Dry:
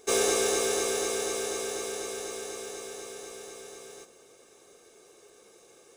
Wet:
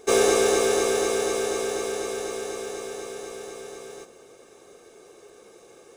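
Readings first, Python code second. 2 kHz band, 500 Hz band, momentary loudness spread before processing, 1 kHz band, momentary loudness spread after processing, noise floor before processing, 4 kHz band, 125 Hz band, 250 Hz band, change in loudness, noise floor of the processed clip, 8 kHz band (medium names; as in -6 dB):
+5.0 dB, +7.5 dB, 19 LU, +6.5 dB, 19 LU, -57 dBFS, +2.0 dB, +7.5 dB, +7.5 dB, +5.0 dB, -52 dBFS, +1.0 dB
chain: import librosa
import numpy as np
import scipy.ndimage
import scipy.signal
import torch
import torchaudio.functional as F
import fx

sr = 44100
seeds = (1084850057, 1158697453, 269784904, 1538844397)

y = fx.high_shelf(x, sr, hz=2600.0, db=-7.5)
y = F.gain(torch.from_numpy(y), 7.5).numpy()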